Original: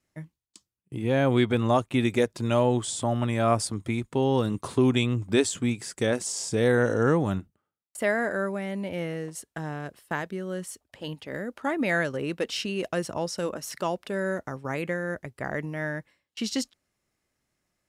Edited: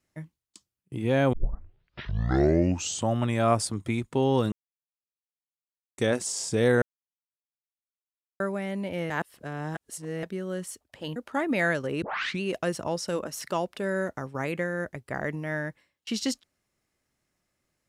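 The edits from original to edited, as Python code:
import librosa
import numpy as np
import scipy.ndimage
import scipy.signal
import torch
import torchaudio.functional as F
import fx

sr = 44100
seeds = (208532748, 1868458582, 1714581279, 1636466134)

y = fx.edit(x, sr, fx.tape_start(start_s=1.33, length_s=1.83),
    fx.silence(start_s=4.52, length_s=1.46),
    fx.silence(start_s=6.82, length_s=1.58),
    fx.reverse_span(start_s=9.1, length_s=1.13),
    fx.cut(start_s=11.16, length_s=0.3),
    fx.tape_start(start_s=12.32, length_s=0.39), tone=tone)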